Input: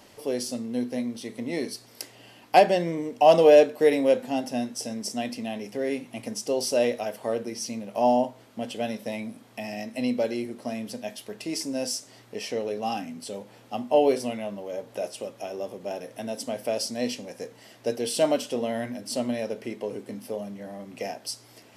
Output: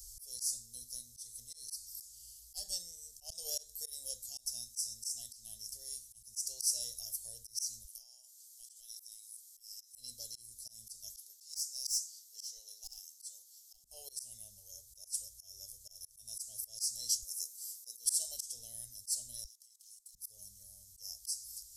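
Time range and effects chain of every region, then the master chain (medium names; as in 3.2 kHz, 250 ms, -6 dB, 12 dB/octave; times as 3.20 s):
7.84–9.94 s: high-pass 1.2 kHz + compression 10:1, threshold -41 dBFS
11.14–13.84 s: high-pass 700 Hz + peaking EQ 9.2 kHz -5.5 dB 0.55 oct + hard clipper -27 dBFS
17.22–18.05 s: elliptic high-pass 220 Hz + treble shelf 9.7 kHz +11.5 dB
19.44–20.15 s: steep high-pass 1.8 kHz + level held to a coarse grid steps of 20 dB + loudspeaker Doppler distortion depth 0.55 ms
whole clip: inverse Chebyshev band-stop 140–2600 Hz, stop band 50 dB; bass shelf 66 Hz +8.5 dB; slow attack 167 ms; trim +11.5 dB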